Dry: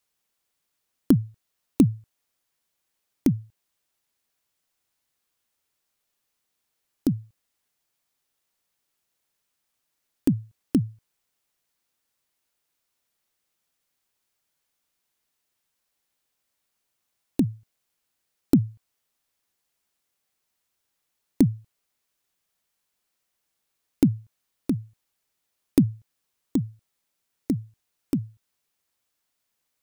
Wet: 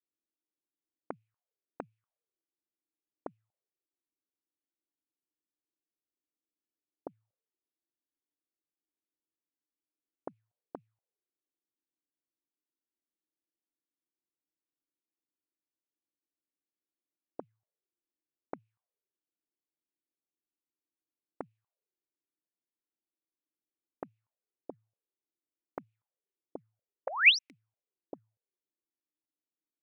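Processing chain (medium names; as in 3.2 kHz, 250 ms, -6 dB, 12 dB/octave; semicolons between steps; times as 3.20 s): painted sound rise, 27.07–27.39 s, 470–6100 Hz -12 dBFS; auto-wah 310–2500 Hz, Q 5.5, up, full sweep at -19 dBFS; trim -2 dB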